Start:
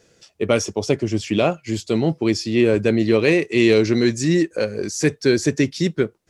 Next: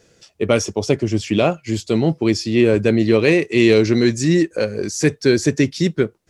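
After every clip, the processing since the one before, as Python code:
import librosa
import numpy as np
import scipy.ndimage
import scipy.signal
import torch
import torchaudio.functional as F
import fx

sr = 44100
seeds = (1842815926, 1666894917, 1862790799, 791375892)

y = fx.low_shelf(x, sr, hz=140.0, db=3.0)
y = y * 10.0 ** (1.5 / 20.0)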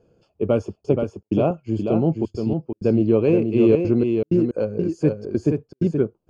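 y = fx.step_gate(x, sr, bpm=160, pattern='xxxxxxxx.xx...xx', floor_db=-60.0, edge_ms=4.5)
y = np.convolve(y, np.full(23, 1.0 / 23))[:len(y)]
y = y + 10.0 ** (-5.5 / 20.0) * np.pad(y, (int(476 * sr / 1000.0), 0))[:len(y)]
y = y * 10.0 ** (-2.0 / 20.0)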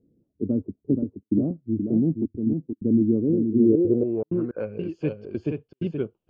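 y = fx.filter_sweep_lowpass(x, sr, from_hz=270.0, to_hz=3000.0, start_s=3.65, end_s=4.83, q=4.1)
y = y * 10.0 ** (-7.5 / 20.0)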